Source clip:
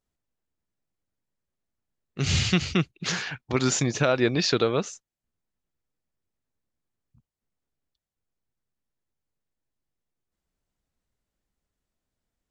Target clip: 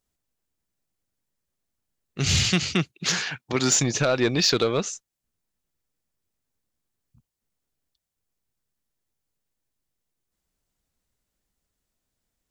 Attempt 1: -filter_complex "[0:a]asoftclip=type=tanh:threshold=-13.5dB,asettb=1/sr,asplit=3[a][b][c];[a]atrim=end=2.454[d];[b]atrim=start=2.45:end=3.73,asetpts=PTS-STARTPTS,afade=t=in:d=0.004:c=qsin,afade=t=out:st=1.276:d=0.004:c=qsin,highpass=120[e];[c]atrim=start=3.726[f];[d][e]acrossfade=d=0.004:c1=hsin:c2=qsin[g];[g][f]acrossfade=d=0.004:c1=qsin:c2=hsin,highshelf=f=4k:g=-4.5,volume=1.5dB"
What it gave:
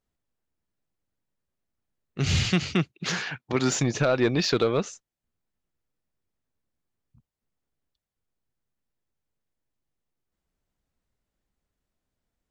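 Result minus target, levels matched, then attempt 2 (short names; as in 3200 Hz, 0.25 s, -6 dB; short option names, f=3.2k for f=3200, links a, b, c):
8000 Hz band -6.0 dB
-filter_complex "[0:a]asoftclip=type=tanh:threshold=-13.5dB,asettb=1/sr,asplit=3[a][b][c];[a]atrim=end=2.454[d];[b]atrim=start=2.45:end=3.73,asetpts=PTS-STARTPTS,afade=t=in:d=0.004:c=qsin,afade=t=out:st=1.276:d=0.004:c=qsin,highpass=120[e];[c]atrim=start=3.726[f];[d][e]acrossfade=d=0.004:c1=hsin:c2=qsin[g];[g][f]acrossfade=d=0.004:c1=qsin:c2=hsin,highshelf=f=4k:g=7.5,volume=1.5dB"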